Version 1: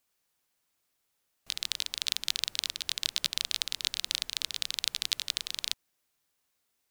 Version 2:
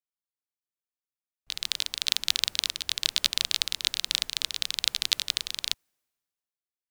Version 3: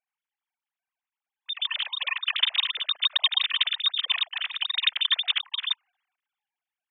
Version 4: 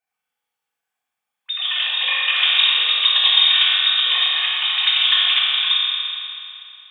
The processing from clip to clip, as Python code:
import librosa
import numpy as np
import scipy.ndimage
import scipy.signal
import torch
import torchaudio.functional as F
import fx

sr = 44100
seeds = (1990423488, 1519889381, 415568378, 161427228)

y1 = fx.band_widen(x, sr, depth_pct=70)
y1 = F.gain(torch.from_numpy(y1), 4.5).numpy()
y2 = fx.sine_speech(y1, sr)
y2 = F.gain(torch.from_numpy(y2), 2.5).numpy()
y3 = fx.rev_fdn(y2, sr, rt60_s=2.8, lf_ratio=1.0, hf_ratio=0.9, size_ms=12.0, drr_db=-9.0)
y3 = F.gain(torch.from_numpy(y3), 1.5).numpy()